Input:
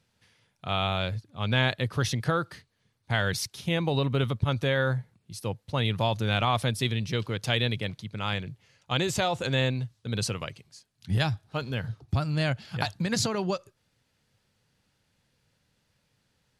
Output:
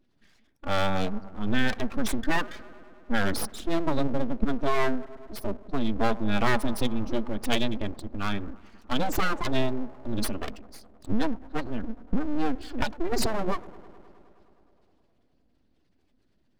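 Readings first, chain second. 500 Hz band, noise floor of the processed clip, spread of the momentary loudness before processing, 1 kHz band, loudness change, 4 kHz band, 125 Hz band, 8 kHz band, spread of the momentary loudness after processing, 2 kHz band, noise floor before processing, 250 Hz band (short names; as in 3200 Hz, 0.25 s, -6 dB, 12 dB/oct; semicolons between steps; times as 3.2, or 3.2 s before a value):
0.0 dB, -67 dBFS, 8 LU, +1.0 dB, -1.5 dB, -5.0 dB, -8.5 dB, -2.5 dB, 9 LU, -1.5 dB, -74 dBFS, +4.0 dB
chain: spectral contrast raised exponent 2.1; analogue delay 0.104 s, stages 1024, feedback 79%, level -21 dB; full-wave rectifier; gain +5 dB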